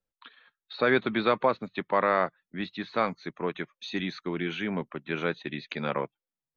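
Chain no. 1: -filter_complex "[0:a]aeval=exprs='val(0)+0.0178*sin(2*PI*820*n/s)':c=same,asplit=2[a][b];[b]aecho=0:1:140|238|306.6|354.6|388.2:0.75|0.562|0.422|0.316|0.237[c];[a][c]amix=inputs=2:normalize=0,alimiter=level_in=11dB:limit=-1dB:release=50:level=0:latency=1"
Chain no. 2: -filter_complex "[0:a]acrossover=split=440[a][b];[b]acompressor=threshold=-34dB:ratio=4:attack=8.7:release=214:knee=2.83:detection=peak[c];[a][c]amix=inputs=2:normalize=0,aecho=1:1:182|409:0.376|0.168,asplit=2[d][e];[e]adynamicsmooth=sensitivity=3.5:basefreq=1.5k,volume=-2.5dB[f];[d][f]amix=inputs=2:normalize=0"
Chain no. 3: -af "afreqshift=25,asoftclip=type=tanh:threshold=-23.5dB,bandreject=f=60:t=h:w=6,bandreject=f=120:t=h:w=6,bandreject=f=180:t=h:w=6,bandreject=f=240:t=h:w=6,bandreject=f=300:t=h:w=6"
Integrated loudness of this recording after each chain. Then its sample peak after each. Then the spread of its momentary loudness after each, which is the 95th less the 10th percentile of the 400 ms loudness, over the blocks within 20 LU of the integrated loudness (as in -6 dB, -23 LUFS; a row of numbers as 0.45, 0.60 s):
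-16.0, -28.5, -33.5 LUFS; -1.0, -11.5, -22.0 dBFS; 8, 8, 8 LU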